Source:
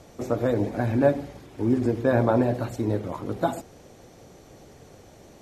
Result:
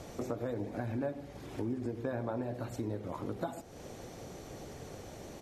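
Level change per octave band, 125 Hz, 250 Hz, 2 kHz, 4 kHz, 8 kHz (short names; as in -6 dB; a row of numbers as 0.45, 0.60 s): -12.5, -12.5, -13.0, -7.5, -4.5 dB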